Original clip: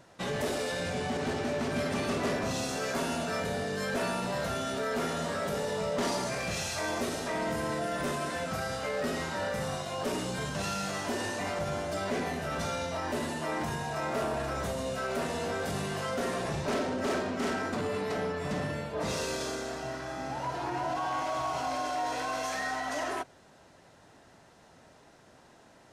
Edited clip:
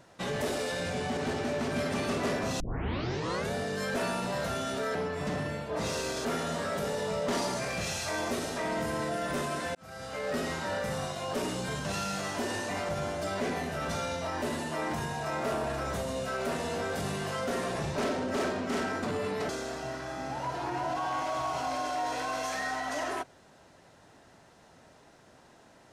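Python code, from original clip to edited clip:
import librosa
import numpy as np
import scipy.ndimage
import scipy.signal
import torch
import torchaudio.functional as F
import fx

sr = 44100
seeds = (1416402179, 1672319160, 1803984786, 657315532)

y = fx.edit(x, sr, fx.tape_start(start_s=2.6, length_s=0.92),
    fx.fade_in_span(start_s=8.45, length_s=0.59),
    fx.move(start_s=18.19, length_s=1.3, to_s=4.95), tone=tone)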